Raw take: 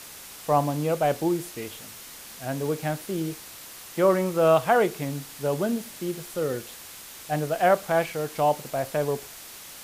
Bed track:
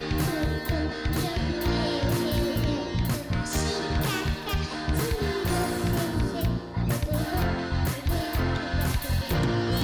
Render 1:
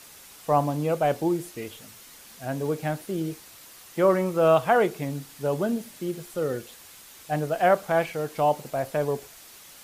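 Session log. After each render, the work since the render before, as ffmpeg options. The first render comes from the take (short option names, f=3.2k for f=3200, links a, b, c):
-af "afftdn=nr=6:nf=-43"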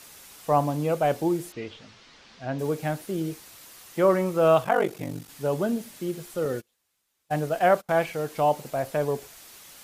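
-filter_complex "[0:a]asettb=1/sr,asplit=3[a][b][c];[a]atrim=end=1.524[d];[b]atrim=start=1.52:end=2.59,asetpts=PTS-STARTPTS,afade=t=in:d=0.004:c=qsin,afade=t=out:st=1.066:d=0.004:c=qsin,lowpass=f=5k:w=0.5412,lowpass=f=5k:w=1.3066[e];[c]atrim=start=2.586[f];[d][e]acrossfade=d=0.004:c1=hsin:c2=qsin[g];[g][f]acrossfade=d=0.004:c1=qsin:c2=hsin,asettb=1/sr,asplit=3[h][i][j];[h]atrim=end=4.634[k];[i]atrim=start=4.63:end=5.29,asetpts=PTS-STARTPTS,afade=t=in:d=0.004:c=qsin,afade=t=out:st=0.656:d=0.004:c=qsin,aeval=exprs='val(0)*sin(2*PI*24*n/s)':c=same[l];[j]atrim=start=5.286[m];[k][l]acrossfade=d=0.004:c1=hsin:c2=qsin[n];[n][m]acrossfade=d=0.004:c1=qsin:c2=hsin,asettb=1/sr,asplit=3[o][p][q];[o]atrim=end=6.454[r];[p]atrim=start=6.45:end=7.89,asetpts=PTS-STARTPTS,afade=t=in:d=0.004:c=qsin,afade=t=out:st=1.436:d=0.004:c=qsin,agate=range=-28dB:threshold=-35dB:ratio=16:release=100:detection=peak[s];[q]atrim=start=7.886[t];[r][s]acrossfade=d=0.004:c1=hsin:c2=qsin[u];[u][t]acrossfade=d=0.004:c1=qsin:c2=hsin"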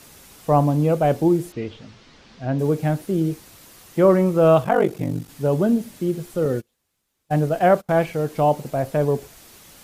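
-af "lowshelf=f=470:g=11"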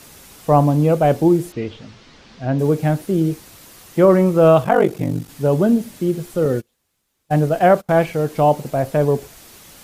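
-af "volume=3.5dB,alimiter=limit=-3dB:level=0:latency=1"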